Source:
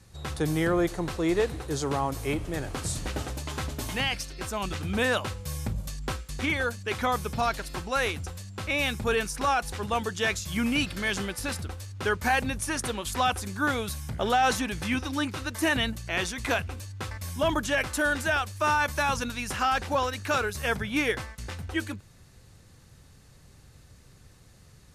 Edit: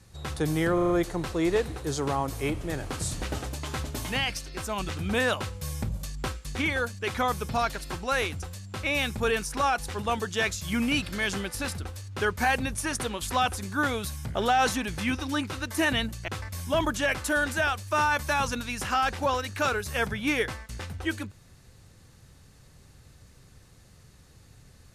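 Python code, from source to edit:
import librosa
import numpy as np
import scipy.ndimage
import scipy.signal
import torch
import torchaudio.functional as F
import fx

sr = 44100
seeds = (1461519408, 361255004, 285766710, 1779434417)

y = fx.edit(x, sr, fx.stutter(start_s=0.74, slice_s=0.04, count=5),
    fx.cut(start_s=16.12, length_s=0.85), tone=tone)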